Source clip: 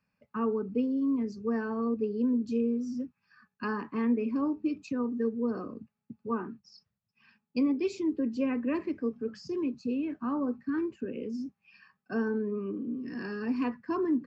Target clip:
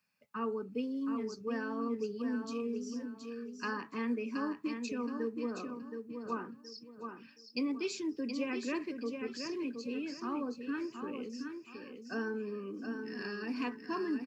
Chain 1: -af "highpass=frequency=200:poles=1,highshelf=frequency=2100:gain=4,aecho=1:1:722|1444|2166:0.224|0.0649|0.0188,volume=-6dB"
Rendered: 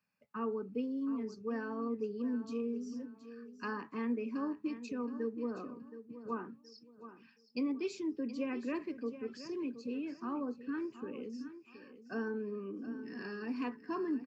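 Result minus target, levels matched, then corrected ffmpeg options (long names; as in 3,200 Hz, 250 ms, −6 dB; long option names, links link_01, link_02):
4,000 Hz band −7.0 dB; echo-to-direct −6.5 dB
-af "highpass=frequency=200:poles=1,highshelf=frequency=2100:gain=13.5,aecho=1:1:722|1444|2166|2888:0.473|0.137|0.0398|0.0115,volume=-6dB"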